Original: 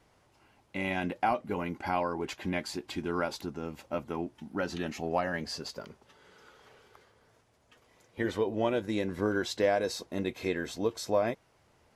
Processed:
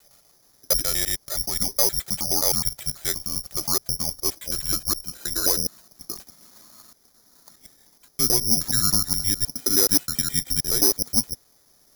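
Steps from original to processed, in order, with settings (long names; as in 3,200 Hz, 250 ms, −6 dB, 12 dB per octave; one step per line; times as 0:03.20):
slices reordered back to front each 105 ms, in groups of 6
single-sideband voice off tune −220 Hz 170–2,800 Hz
wave folding −19.5 dBFS
bad sample-rate conversion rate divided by 8×, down filtered, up zero stuff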